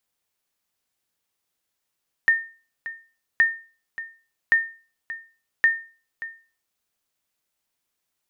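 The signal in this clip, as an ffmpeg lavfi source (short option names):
-f lavfi -i "aevalsrc='0.316*(sin(2*PI*1820*mod(t,1.12))*exp(-6.91*mod(t,1.12)/0.37)+0.168*sin(2*PI*1820*max(mod(t,1.12)-0.58,0))*exp(-6.91*max(mod(t,1.12)-0.58,0)/0.37))':d=4.48:s=44100"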